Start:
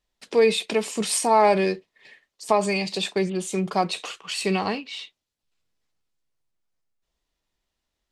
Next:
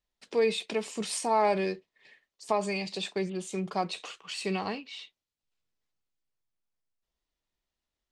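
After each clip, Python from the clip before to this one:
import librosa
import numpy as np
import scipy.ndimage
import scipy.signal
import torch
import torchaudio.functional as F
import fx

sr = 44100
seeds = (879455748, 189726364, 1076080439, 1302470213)

y = scipy.signal.sosfilt(scipy.signal.butter(2, 9000.0, 'lowpass', fs=sr, output='sos'), x)
y = y * 10.0 ** (-7.5 / 20.0)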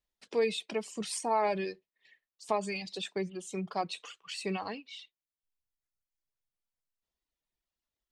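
y = fx.dereverb_blind(x, sr, rt60_s=1.2)
y = y * 10.0 ** (-2.5 / 20.0)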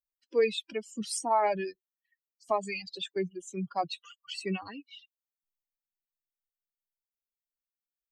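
y = fx.bin_expand(x, sr, power=2.0)
y = y * 10.0 ** (5.0 / 20.0)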